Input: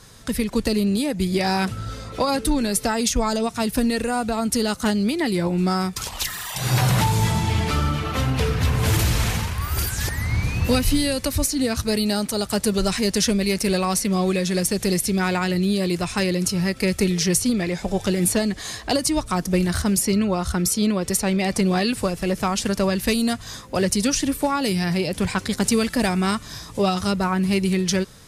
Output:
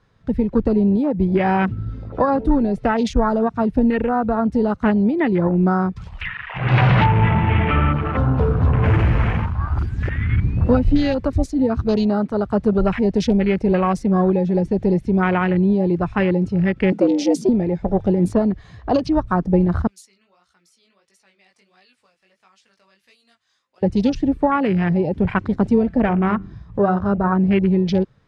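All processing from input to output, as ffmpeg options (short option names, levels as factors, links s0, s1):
-filter_complex "[0:a]asettb=1/sr,asplit=3[s0][s1][s2];[s0]atrim=end=6.214[s3];[s1]atrim=start=6.21:end=7.93,asetpts=PTS-STARTPTS,afade=t=in:d=0.004:c=qsin,afade=t=out:st=1.716:d=0.004:c=qsin,acrusher=bits=3:mode=log:mix=0:aa=0.000001,lowpass=f=2800:t=q:w=1.9[s4];[s2]atrim=start=7.926[s5];[s3][s4]acrossfade=d=0.004:c1=hsin:c2=qsin[s6];[s6][s5]acrossfade=d=0.004:c1=qsin:c2=hsin,asettb=1/sr,asplit=3[s7][s8][s9];[s7]atrim=end=16.924[s10];[s8]atrim=start=16.92:end=17.49,asetpts=PTS-STARTPTS,afade=t=in:d=0.004:c=qsin,afade=t=out:st=0.566:d=0.004:c=qsin,afreqshift=130,bass=f=250:g=0,treble=f=4000:g=4[s11];[s9]atrim=start=17.486[s12];[s10][s11]acrossfade=d=0.004:c1=hsin:c2=qsin[s13];[s13][s12]acrossfade=d=0.004:c1=qsin:c2=hsin,asettb=1/sr,asplit=3[s14][s15][s16];[s14]atrim=end=19.874[s17];[s15]atrim=start=19.87:end=23.83,asetpts=PTS-STARTPTS,afade=t=in:d=0.004:c=qsin,afade=t=out:st=3.956:d=0.004:c=qsin,aderivative,flanger=delay=15.5:depth=6.4:speed=1.5[s18];[s16]atrim=start=23.826[s19];[s17][s18]acrossfade=d=0.004:c1=hsin:c2=qsin[s20];[s20][s19]acrossfade=d=0.004:c1=qsin:c2=hsin,asettb=1/sr,asplit=3[s21][s22][s23];[s21]atrim=end=25.784[s24];[s22]atrim=start=25.78:end=27.32,asetpts=PTS-STARTPTS,afade=t=in:d=0.004:c=qsin,afade=t=out:st=1.536:d=0.004:c=qsin,highshelf=f=2900:g=-8,bandreject=f=96.18:t=h:w=4,bandreject=f=192.36:t=h:w=4,bandreject=f=288.54:t=h:w=4,bandreject=f=384.72:t=h:w=4,bandreject=f=480.9:t=h:w=4,bandreject=f=577.08:t=h:w=4,bandreject=f=673.26:t=h:w=4,bandreject=f=769.44:t=h:w=4,bandreject=f=865.62:t=h:w=4,bandreject=f=961.8:t=h:w=4,bandreject=f=1057.98:t=h:w=4,bandreject=f=1154.16:t=h:w=4,bandreject=f=1250.34:t=h:w=4,bandreject=f=1346.52:t=h:w=4,bandreject=f=1442.7:t=h:w=4,bandreject=f=1538.88:t=h:w=4,bandreject=f=1635.06:t=h:w=4,bandreject=f=1731.24:t=h:w=4,bandreject=f=1827.42:t=h:w=4,bandreject=f=1923.6:t=h:w=4,bandreject=f=2019.78:t=h:w=4,bandreject=f=2115.96:t=h:w=4,bandreject=f=2212.14:t=h:w=4,bandreject=f=2308.32:t=h:w=4,bandreject=f=2404.5:t=h:w=4,bandreject=f=2500.68:t=h:w=4,bandreject=f=2596.86:t=h:w=4,bandreject=f=2693.04:t=h:w=4,bandreject=f=2789.22:t=h:w=4,bandreject=f=2885.4:t=h:w=4,bandreject=f=2981.58:t=h:w=4[s25];[s23]atrim=start=27.316[s26];[s24][s25]acrossfade=d=0.004:c1=hsin:c2=qsin[s27];[s27][s26]acrossfade=d=0.004:c1=qsin:c2=hsin,afwtdn=0.0398,lowpass=2300,volume=1.68"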